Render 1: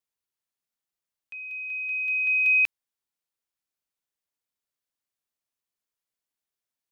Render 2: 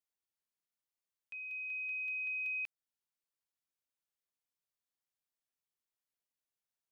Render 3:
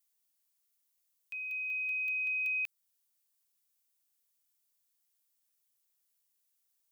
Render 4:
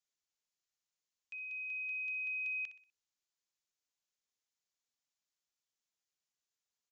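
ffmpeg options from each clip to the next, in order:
ffmpeg -i in.wav -af "acompressor=threshold=-31dB:ratio=6,volume=-6.5dB" out.wav
ffmpeg -i in.wav -af "crystalizer=i=3.5:c=0" out.wav
ffmpeg -i in.wav -af "aresample=16000,aresample=44100,aecho=1:1:62|124|186|248:0.237|0.0901|0.0342|0.013,volume=-5dB" out.wav

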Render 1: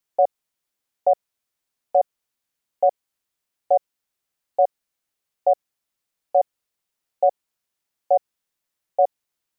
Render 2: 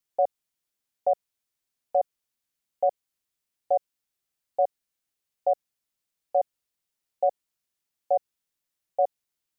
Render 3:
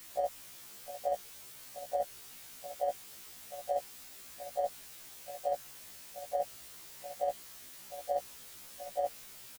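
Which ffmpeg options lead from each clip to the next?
ffmpeg -i in.wav -af "equalizer=frequency=890:width=0.45:gain=-4,volume=-2dB" out.wav
ffmpeg -i in.wav -af "aeval=exprs='val(0)+0.5*0.0112*sgn(val(0))':channel_layout=same,aecho=1:1:706:0.224,afftfilt=real='re*1.73*eq(mod(b,3),0)':imag='im*1.73*eq(mod(b,3),0)':win_size=2048:overlap=0.75,volume=-3dB" out.wav

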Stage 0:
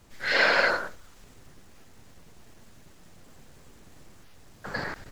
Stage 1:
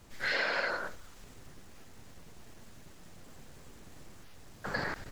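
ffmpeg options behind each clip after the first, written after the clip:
ffmpeg -i in.wav -af "acompressor=threshold=-29dB:ratio=6" out.wav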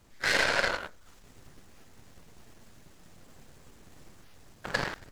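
ffmpeg -i in.wav -af "aeval=exprs='0.126*(cos(1*acos(clip(val(0)/0.126,-1,1)))-cos(1*PI/2))+0.0112*(cos(3*acos(clip(val(0)/0.126,-1,1)))-cos(3*PI/2))+0.01*(cos(6*acos(clip(val(0)/0.126,-1,1)))-cos(6*PI/2))+0.00891*(cos(7*acos(clip(val(0)/0.126,-1,1)))-cos(7*PI/2))':channel_layout=same,volume=8.5dB" out.wav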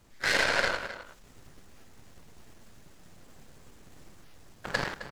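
ffmpeg -i in.wav -filter_complex "[0:a]asplit=2[link_01][link_02];[link_02]adelay=262.4,volume=-12dB,highshelf=frequency=4000:gain=-5.9[link_03];[link_01][link_03]amix=inputs=2:normalize=0" out.wav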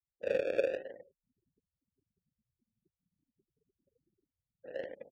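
ffmpeg -i in.wav -filter_complex "[0:a]acrusher=samples=34:mix=1:aa=0.000001:lfo=1:lforange=20.4:lforate=0.51,afftfilt=real='re*gte(hypot(re,im),0.00891)':imag='im*gte(hypot(re,im),0.00891)':win_size=1024:overlap=0.75,asplit=3[link_01][link_02][link_03];[link_01]bandpass=frequency=530:width_type=q:width=8,volume=0dB[link_04];[link_02]bandpass=frequency=1840:width_type=q:width=8,volume=-6dB[link_05];[link_03]bandpass=frequency=2480:width_type=q:width=8,volume=-9dB[link_06];[link_04][link_05][link_06]amix=inputs=3:normalize=0,volume=3dB" out.wav

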